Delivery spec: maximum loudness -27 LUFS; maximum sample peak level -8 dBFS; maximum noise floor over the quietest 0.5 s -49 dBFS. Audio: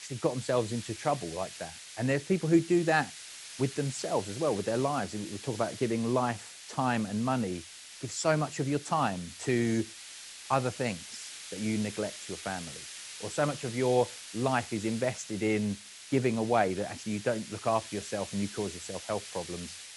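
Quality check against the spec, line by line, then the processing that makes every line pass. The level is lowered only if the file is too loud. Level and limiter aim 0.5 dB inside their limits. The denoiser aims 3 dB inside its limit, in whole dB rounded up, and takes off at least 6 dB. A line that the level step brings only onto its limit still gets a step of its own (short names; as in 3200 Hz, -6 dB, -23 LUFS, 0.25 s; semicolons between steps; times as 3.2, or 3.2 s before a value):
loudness -31.5 LUFS: OK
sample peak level -10.5 dBFS: OK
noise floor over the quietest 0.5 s -47 dBFS: fail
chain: denoiser 6 dB, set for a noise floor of -47 dBFS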